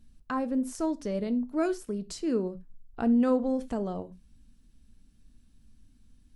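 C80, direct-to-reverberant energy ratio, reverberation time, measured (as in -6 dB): 28.5 dB, 11.0 dB, not exponential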